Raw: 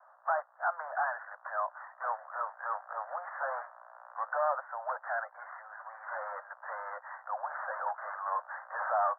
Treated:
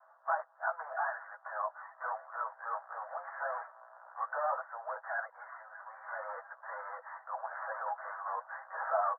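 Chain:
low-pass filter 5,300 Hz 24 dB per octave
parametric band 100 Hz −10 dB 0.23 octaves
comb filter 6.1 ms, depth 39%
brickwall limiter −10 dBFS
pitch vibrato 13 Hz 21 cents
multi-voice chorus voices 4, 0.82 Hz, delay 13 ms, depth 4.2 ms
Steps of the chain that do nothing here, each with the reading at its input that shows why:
low-pass filter 5,300 Hz: nothing at its input above 2,000 Hz
parametric band 100 Hz: nothing at its input below 450 Hz
brickwall limiter −10 dBFS: peak of its input −16.0 dBFS

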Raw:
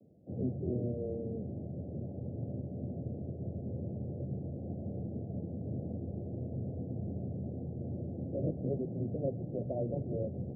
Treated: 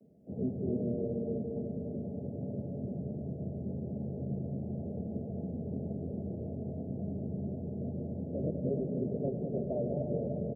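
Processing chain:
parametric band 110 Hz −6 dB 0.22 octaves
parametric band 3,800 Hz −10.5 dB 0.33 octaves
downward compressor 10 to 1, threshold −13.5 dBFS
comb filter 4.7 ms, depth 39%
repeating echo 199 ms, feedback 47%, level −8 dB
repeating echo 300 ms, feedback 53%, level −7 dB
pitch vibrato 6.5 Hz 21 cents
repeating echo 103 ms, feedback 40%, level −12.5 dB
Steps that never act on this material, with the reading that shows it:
parametric band 3,800 Hz: nothing at its input above 720 Hz
downward compressor, threshold −13.5 dBFS: peak of its input −22.5 dBFS

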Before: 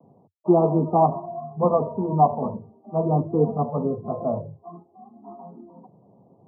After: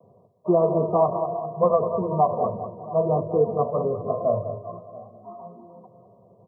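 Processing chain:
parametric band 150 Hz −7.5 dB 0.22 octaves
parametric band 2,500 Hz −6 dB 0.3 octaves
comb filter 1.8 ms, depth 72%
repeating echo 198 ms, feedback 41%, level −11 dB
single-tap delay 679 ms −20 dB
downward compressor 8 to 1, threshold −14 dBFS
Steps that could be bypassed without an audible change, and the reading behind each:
parametric band 2,500 Hz: nothing at its input above 1,200 Hz

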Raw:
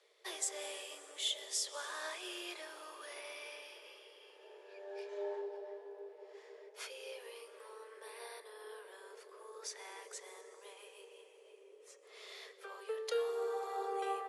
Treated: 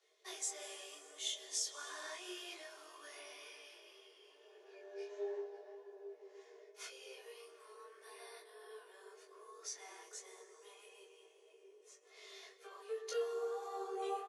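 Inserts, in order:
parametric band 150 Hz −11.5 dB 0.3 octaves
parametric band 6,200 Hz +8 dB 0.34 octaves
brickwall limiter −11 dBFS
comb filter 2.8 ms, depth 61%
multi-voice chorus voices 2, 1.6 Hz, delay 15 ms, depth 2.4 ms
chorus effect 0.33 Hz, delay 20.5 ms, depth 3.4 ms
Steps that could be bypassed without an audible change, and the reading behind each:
parametric band 150 Hz: nothing at its input below 300 Hz
brickwall limiter −11 dBFS: peak of its input −20.0 dBFS

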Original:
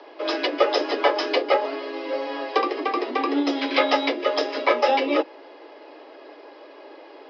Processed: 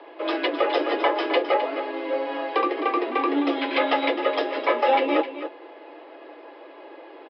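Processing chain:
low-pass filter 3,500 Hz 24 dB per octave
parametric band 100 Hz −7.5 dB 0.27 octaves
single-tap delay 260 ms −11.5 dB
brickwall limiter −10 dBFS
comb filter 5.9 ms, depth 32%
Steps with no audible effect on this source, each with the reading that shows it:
parametric band 100 Hz: nothing at its input below 230 Hz

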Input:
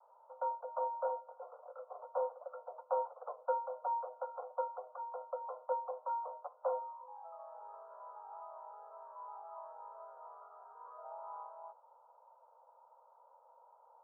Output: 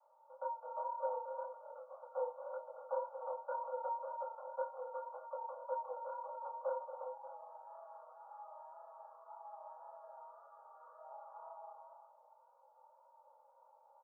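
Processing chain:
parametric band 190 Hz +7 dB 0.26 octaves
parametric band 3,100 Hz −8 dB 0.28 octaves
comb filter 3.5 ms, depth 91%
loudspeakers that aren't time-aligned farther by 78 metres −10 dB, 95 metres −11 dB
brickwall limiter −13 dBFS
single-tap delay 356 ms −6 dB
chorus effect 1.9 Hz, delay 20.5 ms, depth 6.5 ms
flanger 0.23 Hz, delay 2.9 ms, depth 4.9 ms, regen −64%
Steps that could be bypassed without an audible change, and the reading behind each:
parametric band 190 Hz: nothing at its input below 430 Hz
parametric band 3,100 Hz: nothing at its input above 1,400 Hz
brickwall limiter −13 dBFS: peak of its input −19.0 dBFS

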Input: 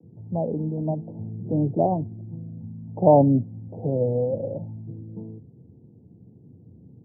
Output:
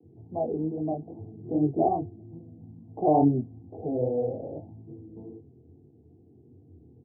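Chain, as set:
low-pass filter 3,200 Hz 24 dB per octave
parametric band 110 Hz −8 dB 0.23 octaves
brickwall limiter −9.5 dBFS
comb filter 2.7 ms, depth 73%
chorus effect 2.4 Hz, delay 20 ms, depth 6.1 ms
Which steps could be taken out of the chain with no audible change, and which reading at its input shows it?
low-pass filter 3,200 Hz: nothing at its input above 960 Hz

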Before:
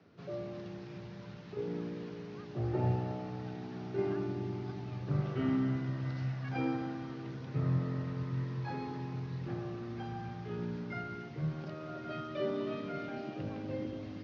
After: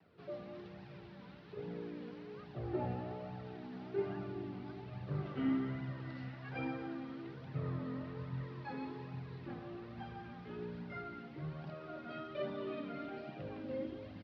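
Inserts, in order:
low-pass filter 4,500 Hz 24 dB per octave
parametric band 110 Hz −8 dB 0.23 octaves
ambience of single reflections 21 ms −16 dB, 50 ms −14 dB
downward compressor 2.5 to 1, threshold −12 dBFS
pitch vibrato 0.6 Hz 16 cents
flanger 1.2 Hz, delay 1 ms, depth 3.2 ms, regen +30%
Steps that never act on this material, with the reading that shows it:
downward compressor, threshold −12 dBFS: peak of its input −21.0 dBFS

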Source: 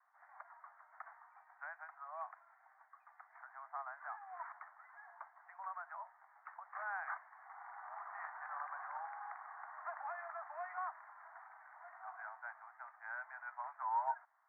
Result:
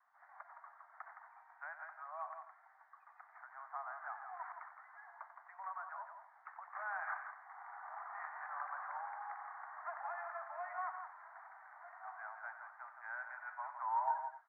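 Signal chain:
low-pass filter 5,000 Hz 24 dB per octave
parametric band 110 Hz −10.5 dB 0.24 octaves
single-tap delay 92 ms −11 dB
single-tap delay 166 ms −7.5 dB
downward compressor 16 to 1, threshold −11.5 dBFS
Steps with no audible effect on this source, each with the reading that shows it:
low-pass filter 5,000 Hz: nothing at its input above 2,300 Hz
parametric band 110 Hz: nothing at its input below 540 Hz
downward compressor, threshold −11.5 dBFS: peak of its input −24.0 dBFS

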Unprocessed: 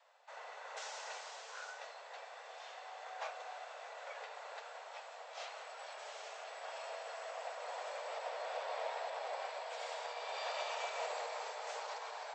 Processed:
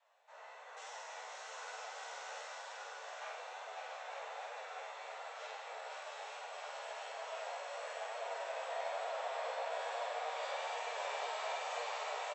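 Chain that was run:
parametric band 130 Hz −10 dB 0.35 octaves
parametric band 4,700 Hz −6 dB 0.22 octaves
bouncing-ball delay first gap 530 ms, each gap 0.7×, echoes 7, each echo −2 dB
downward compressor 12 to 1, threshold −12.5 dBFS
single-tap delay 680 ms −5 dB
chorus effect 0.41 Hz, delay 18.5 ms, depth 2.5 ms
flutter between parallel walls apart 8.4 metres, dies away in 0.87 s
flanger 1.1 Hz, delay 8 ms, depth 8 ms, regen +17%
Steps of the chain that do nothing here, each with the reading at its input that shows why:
parametric band 130 Hz: nothing at its input below 380 Hz
downward compressor, threshold −12.5 dBFS: peak of its input −24.5 dBFS

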